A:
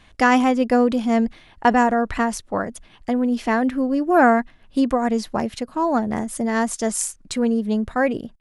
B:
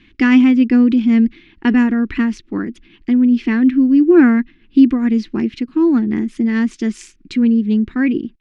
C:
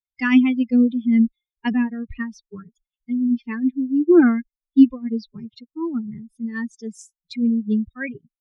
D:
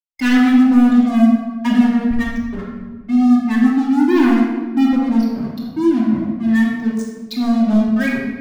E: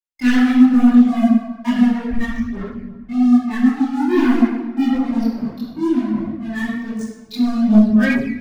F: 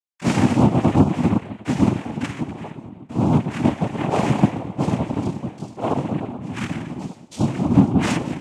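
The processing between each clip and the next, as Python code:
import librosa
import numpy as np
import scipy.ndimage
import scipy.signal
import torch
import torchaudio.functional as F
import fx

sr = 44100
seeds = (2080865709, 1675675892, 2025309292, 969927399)

y1 = fx.curve_eq(x, sr, hz=(120.0, 340.0, 590.0, 2400.0, 5500.0, 11000.0), db=(0, 14, -18, 7, -5, -26))
y1 = y1 * 10.0 ** (-1.0 / 20.0)
y2 = fx.bin_expand(y1, sr, power=3.0)
y3 = fx.leveller(y2, sr, passes=5)
y3 = fx.room_shoebox(y3, sr, seeds[0], volume_m3=1100.0, walls='mixed', distance_m=2.6)
y3 = y3 * 10.0 ** (-13.0 / 20.0)
y4 = fx.chorus_voices(y3, sr, voices=4, hz=1.4, base_ms=22, depth_ms=3.0, mix_pct=65)
y5 = fx.tracing_dist(y4, sr, depth_ms=0.22)
y5 = fx.noise_vocoder(y5, sr, seeds[1], bands=4)
y5 = y5 * 10.0 ** (-4.5 / 20.0)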